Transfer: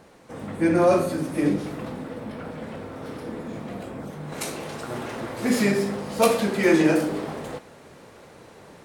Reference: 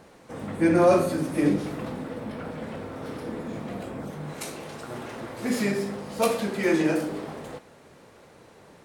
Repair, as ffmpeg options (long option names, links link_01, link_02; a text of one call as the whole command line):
ffmpeg -i in.wav -af "asetnsamples=nb_out_samples=441:pad=0,asendcmd='4.32 volume volume -4.5dB',volume=0dB" out.wav